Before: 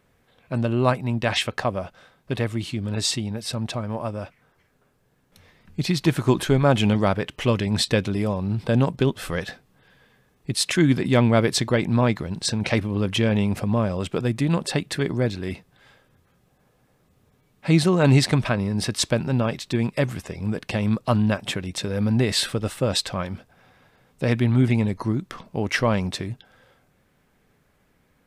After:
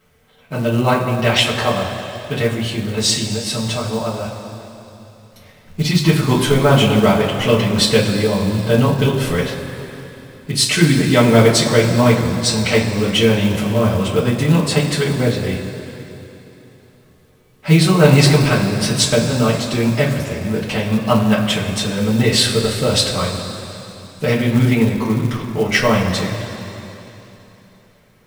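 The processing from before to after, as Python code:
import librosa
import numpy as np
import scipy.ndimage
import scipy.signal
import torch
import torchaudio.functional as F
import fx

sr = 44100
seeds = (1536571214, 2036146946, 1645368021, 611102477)

y = fx.rev_double_slope(x, sr, seeds[0], early_s=0.21, late_s=3.3, knee_db=-18, drr_db=-8.5)
y = fx.quant_companded(y, sr, bits=6)
y = y * librosa.db_to_amplitude(-1.0)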